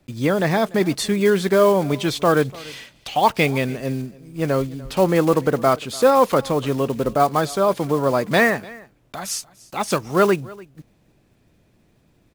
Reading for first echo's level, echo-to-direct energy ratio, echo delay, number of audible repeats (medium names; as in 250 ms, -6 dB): -22.0 dB, -22.0 dB, 293 ms, 1